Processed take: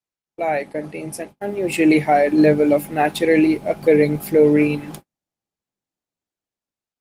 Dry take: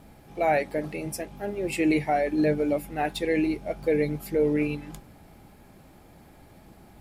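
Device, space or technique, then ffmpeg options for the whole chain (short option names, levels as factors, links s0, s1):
video call: -af "highpass=130,dynaudnorm=f=600:g=5:m=2.99,agate=range=0.00355:threshold=0.0178:ratio=16:detection=peak,volume=1.19" -ar 48000 -c:a libopus -b:a 24k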